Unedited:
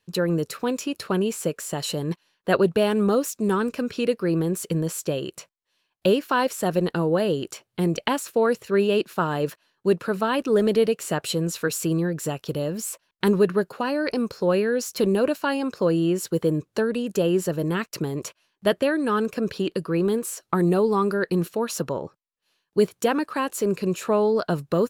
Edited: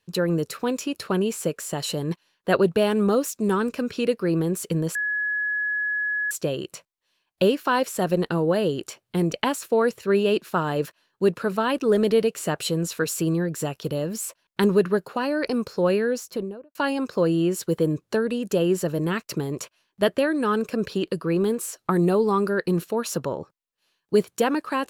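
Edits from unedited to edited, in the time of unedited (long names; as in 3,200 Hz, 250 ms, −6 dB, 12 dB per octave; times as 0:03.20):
0:04.95: insert tone 1,690 Hz −22.5 dBFS 1.36 s
0:14.62–0:15.39: fade out and dull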